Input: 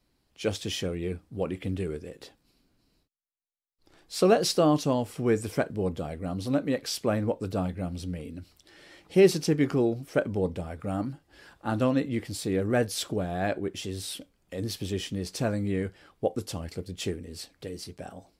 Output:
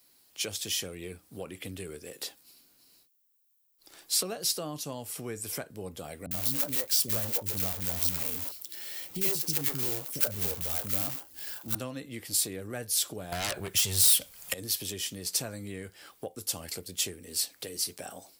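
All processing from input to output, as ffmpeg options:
ffmpeg -i in.wav -filter_complex "[0:a]asettb=1/sr,asplit=3[link_01][link_02][link_03];[link_01]atrim=end=6.264[link_04];[link_02]atrim=start=6.26:end=11.75,asetpts=PTS-STARTPTS,afade=type=in:duration=0.004:curve=qsin,afade=type=out:start_time=5.486:duration=0.004:curve=qsin,equalizer=frequency=72:width_type=o:width=1.5:gain=7.5,acrusher=bits=2:mode=log:mix=0:aa=0.000001,acrossover=split=340|1400[link_05][link_06][link_07];[link_07]adelay=50[link_08];[link_06]adelay=80[link_09];[link_05][link_09][link_08]amix=inputs=3:normalize=0,atrim=end_sample=242109[link_10];[link_03]atrim=start=11.746[link_11];[link_04][link_10]acrossfade=duration=0.004:curve1=hsin:curve2=qsin[link_12];[link_12][link_11]acrossfade=duration=0.004:curve1=qsin:curve2=hsin,asettb=1/sr,asplit=3[link_13][link_14][link_15];[link_13]atrim=end=13.324[link_16];[link_14]atrim=start=13.32:end=14.54,asetpts=PTS-STARTPTS,afade=type=in:duration=0.004:curve=qsin,afade=type=out:start_time=1.216:duration=0.004:curve=qsin,equalizer=frequency=300:width_type=o:width=0.96:gain=-13.5,aeval=exprs='0.119*sin(PI/2*4.47*val(0)/0.119)':channel_layout=same[link_17];[link_15]atrim=start=14.536[link_18];[link_16][link_17]acrossfade=duration=0.004:curve1=hsin:curve2=qsin[link_19];[link_19][link_18]acrossfade=duration=0.004:curve1=qsin:curve2=hsin,acrossover=split=130[link_20][link_21];[link_21]acompressor=threshold=-39dB:ratio=4[link_22];[link_20][link_22]amix=inputs=2:normalize=0,aemphasis=mode=production:type=riaa,volume=3.5dB" out.wav

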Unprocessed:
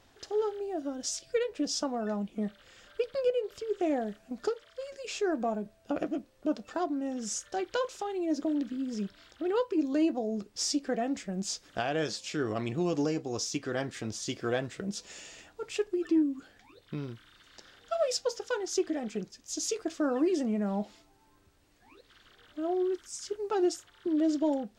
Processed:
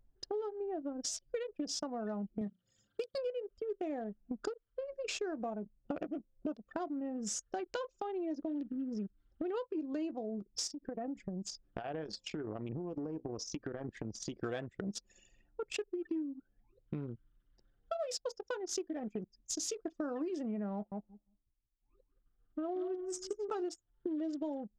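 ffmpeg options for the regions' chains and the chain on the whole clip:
ffmpeg -i in.wav -filter_complex "[0:a]asettb=1/sr,asplit=3[link_01][link_02][link_03];[link_01]atrim=end=2.414[link_04];[link_02]atrim=start=2.41:end=3.18,asetpts=PTS-STARTPTS,afade=type=in:duration=0.004:curve=qsin,afade=type=out:start_time=0.766:duration=0.004:curve=qsin,highpass=frequency=96:width=0.5412,highpass=frequency=96:width=1.3066,bass=frequency=250:gain=5,treble=frequency=4000:gain=15,bandreject=frequency=60:width_type=h:width=6,bandreject=frequency=120:width_type=h:width=6,bandreject=frequency=180:width_type=h:width=6,bandreject=frequency=240:width_type=h:width=6,bandreject=frequency=300:width_type=h:width=6,bandreject=frequency=360:width_type=h:width=6[link_05];[link_03]atrim=start=3.176[link_06];[link_04][link_05]acrossfade=duration=0.004:curve1=hsin:curve2=qsin[link_07];[link_07][link_06]acrossfade=duration=0.004:curve1=qsin:curve2=hsin,asettb=1/sr,asplit=3[link_08][link_09][link_10];[link_08]atrim=end=10.674[link_11];[link_09]atrim=start=10.67:end=14.38,asetpts=PTS-STARTPTS,afade=type=in:duration=0.004:curve=qsin,afade=type=out:start_time=3.706:duration=0.004:curve=qsin,highshelf=frequency=5400:gain=-4,acompressor=threshold=-36dB:ratio=16:attack=3.2:release=140:knee=1:detection=peak[link_12];[link_10]atrim=start=14.376[link_13];[link_11][link_12]acrossfade=duration=0.004:curve1=hsin:curve2=qsin[link_14];[link_14][link_13]acrossfade=duration=0.004:curve1=qsin:curve2=hsin,asettb=1/sr,asplit=3[link_15][link_16][link_17];[link_15]atrim=end=20.744[link_18];[link_16]atrim=start=20.74:end=23.69,asetpts=PTS-STARTPTS,afade=type=in:duration=0.004:curve=qsin,afade=type=out:start_time=2.946:duration=0.004:curve=qsin,agate=range=-33dB:threshold=-55dB:ratio=3:release=100:detection=peak,equalizer=frequency=1200:width=6.1:gain=7.5,aecho=1:1:176|352|528:0.422|0.105|0.0264,atrim=end_sample=130095[link_19];[link_17]atrim=start=23.686[link_20];[link_18][link_19]acrossfade=duration=0.004:curve1=hsin:curve2=qsin[link_21];[link_21][link_20]acrossfade=duration=0.004:curve1=qsin:curve2=hsin,anlmdn=1,acompressor=threshold=-42dB:ratio=6,volume=5.5dB" out.wav

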